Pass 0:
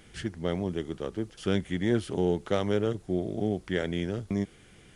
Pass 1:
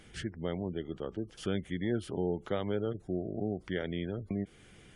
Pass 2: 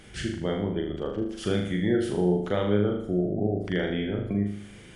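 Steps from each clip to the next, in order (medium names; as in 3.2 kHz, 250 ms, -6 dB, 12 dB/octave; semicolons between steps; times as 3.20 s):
in parallel at +2 dB: compression, threshold -34 dBFS, peak gain reduction 13.5 dB; on the sum: spectral gate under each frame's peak -30 dB strong; trim -8.5 dB
flutter echo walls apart 6.7 m, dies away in 0.66 s; trim +5.5 dB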